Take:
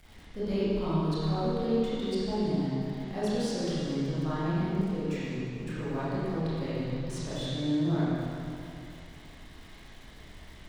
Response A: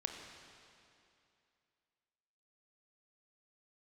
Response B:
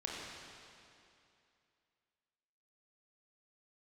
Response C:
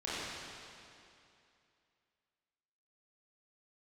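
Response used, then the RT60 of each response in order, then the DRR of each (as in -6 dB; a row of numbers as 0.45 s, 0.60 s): C; 2.6 s, 2.6 s, 2.6 s; 3.0 dB, -4.0 dB, -11.0 dB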